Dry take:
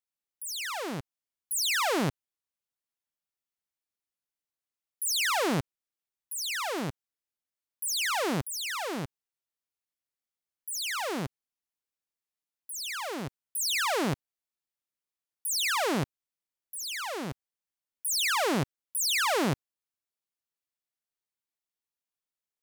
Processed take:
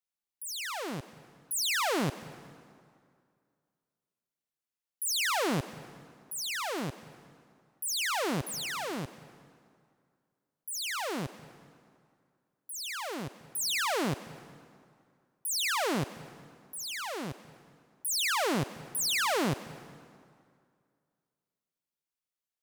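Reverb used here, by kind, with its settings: plate-style reverb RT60 2.2 s, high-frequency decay 0.75×, pre-delay 115 ms, DRR 15.5 dB; trim -2 dB

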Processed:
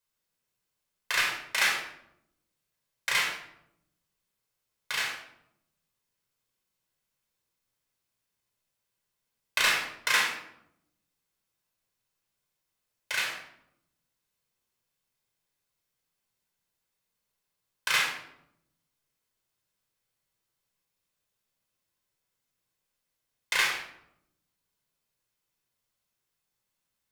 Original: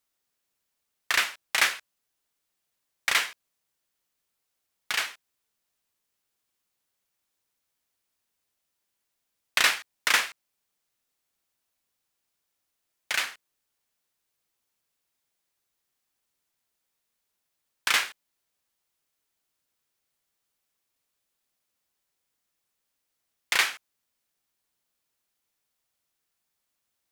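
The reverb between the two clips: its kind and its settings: simulated room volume 1900 m³, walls furnished, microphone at 5.1 m; trim -6.5 dB

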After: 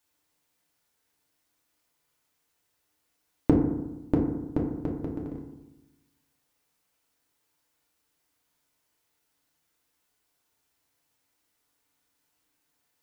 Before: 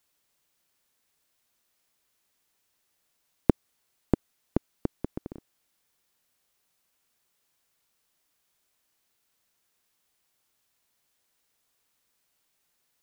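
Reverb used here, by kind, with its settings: FDN reverb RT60 1 s, low-frequency decay 1.25×, high-frequency decay 0.35×, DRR -2 dB; trim -3.5 dB

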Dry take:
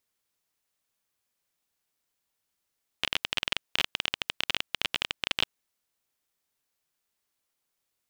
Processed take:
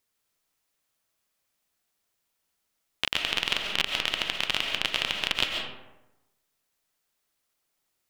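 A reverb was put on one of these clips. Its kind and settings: algorithmic reverb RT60 1 s, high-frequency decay 0.5×, pre-delay 95 ms, DRR 2 dB; trim +2 dB

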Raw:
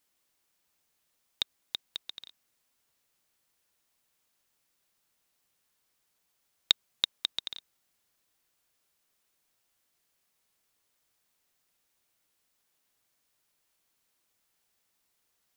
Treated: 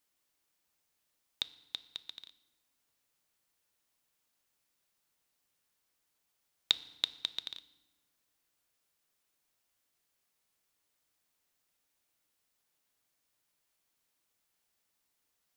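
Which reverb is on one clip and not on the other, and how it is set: FDN reverb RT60 1.1 s, low-frequency decay 1.5×, high-frequency decay 0.8×, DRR 14 dB; trim -4 dB

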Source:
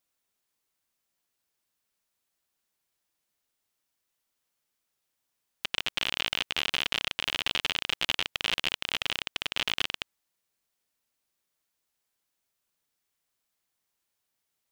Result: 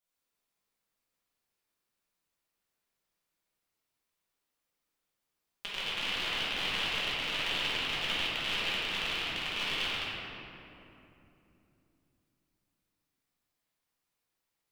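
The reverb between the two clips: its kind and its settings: simulated room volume 130 m³, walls hard, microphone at 1.3 m; trim -11 dB

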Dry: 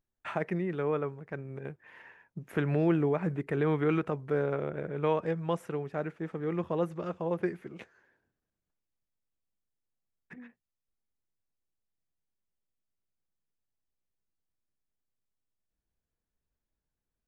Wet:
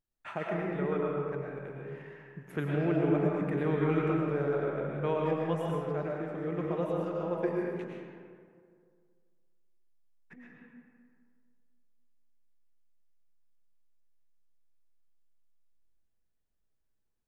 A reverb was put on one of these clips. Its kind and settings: algorithmic reverb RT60 2 s, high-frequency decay 0.5×, pre-delay 70 ms, DRR -2.5 dB; trim -4.5 dB

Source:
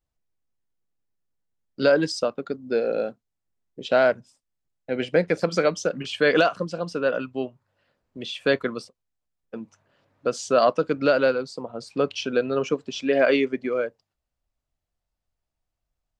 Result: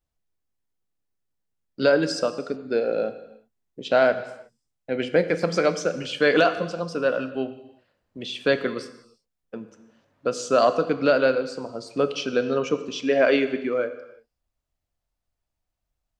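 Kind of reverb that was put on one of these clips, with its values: gated-style reverb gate 390 ms falling, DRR 10 dB

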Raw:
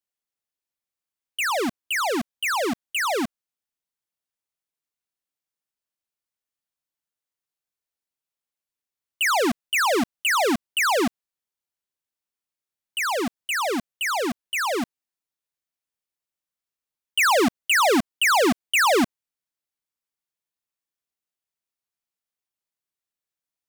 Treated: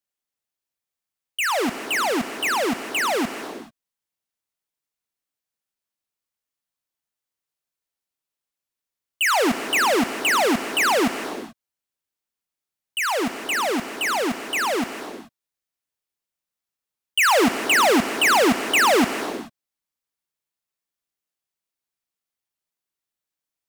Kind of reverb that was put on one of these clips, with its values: gated-style reverb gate 460 ms flat, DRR 9 dB; trim +1.5 dB

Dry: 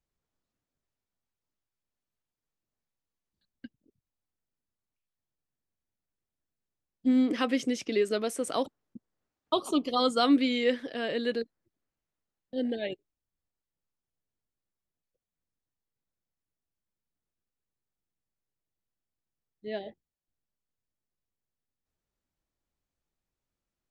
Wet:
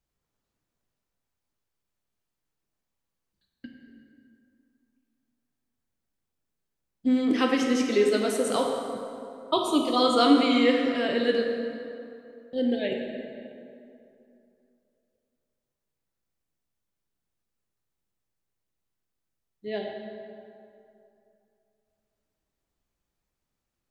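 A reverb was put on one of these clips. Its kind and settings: plate-style reverb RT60 2.7 s, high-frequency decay 0.6×, DRR 0.5 dB; trim +2.5 dB

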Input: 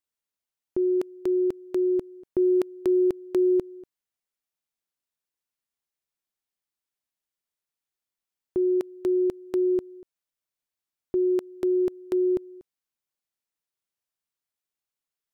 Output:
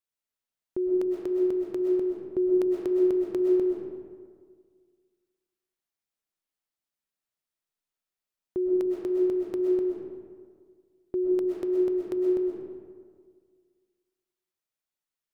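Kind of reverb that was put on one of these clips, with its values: algorithmic reverb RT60 1.8 s, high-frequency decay 0.5×, pre-delay 85 ms, DRR -1 dB; trim -4 dB

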